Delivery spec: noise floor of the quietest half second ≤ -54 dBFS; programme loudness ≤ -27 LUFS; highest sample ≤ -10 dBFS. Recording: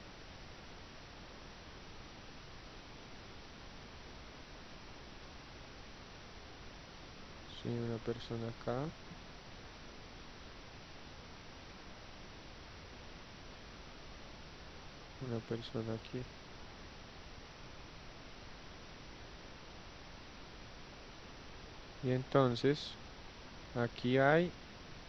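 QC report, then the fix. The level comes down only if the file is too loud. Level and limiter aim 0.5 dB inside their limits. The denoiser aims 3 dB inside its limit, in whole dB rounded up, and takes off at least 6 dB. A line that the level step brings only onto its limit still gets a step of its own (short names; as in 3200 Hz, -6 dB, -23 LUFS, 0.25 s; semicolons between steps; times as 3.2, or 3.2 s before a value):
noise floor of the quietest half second -53 dBFS: fail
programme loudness -43.5 LUFS: OK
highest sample -15.0 dBFS: OK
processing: denoiser 6 dB, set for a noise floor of -53 dBFS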